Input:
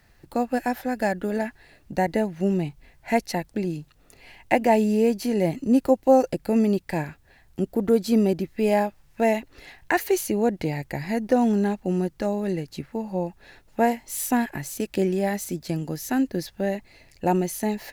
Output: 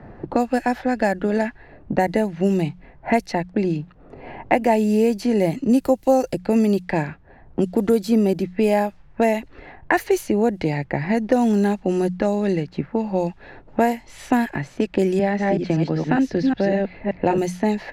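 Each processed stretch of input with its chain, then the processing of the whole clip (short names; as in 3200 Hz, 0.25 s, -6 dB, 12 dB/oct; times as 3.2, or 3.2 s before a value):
15.19–17.38 reverse delay 0.192 s, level -3 dB + LPF 3200 Hz + three-band squash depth 40%
whole clip: low-pass opened by the level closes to 720 Hz, open at -18.5 dBFS; notches 60/120/180 Hz; three-band squash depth 70%; gain +3.5 dB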